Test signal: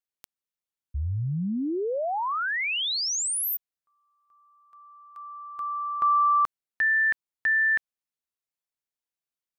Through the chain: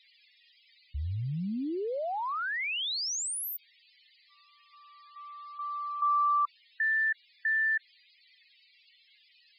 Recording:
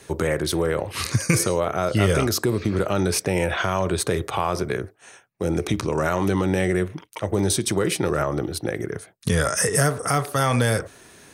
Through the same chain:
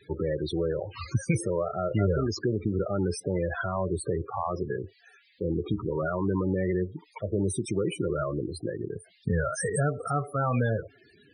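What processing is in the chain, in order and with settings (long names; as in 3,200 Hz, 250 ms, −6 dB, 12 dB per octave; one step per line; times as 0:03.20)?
noise in a band 1,700–5,200 Hz −51 dBFS
spectral peaks only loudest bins 16
level −5 dB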